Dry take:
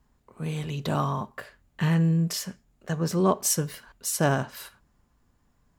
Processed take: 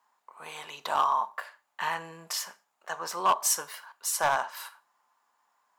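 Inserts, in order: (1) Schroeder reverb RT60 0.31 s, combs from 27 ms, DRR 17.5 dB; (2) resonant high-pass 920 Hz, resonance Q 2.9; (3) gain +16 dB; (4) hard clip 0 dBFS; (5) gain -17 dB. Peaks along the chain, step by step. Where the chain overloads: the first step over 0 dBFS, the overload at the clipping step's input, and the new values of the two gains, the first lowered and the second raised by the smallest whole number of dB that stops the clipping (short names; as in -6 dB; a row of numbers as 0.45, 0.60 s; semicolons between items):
-10.5, -7.5, +8.5, 0.0, -17.0 dBFS; step 3, 8.5 dB; step 3 +7 dB, step 5 -8 dB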